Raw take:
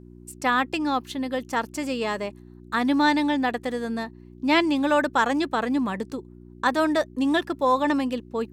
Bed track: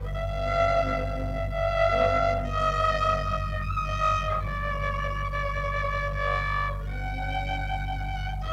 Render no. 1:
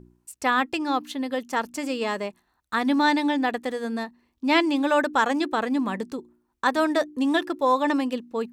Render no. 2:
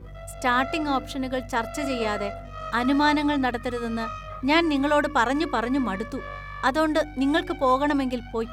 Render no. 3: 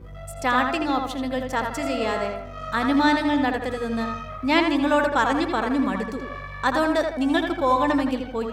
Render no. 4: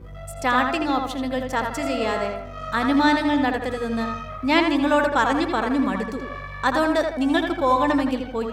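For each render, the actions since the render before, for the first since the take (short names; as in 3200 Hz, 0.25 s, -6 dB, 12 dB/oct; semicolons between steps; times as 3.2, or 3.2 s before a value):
de-hum 60 Hz, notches 6
add bed track -10 dB
tape echo 81 ms, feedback 45%, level -4 dB, low-pass 3000 Hz
gain +1 dB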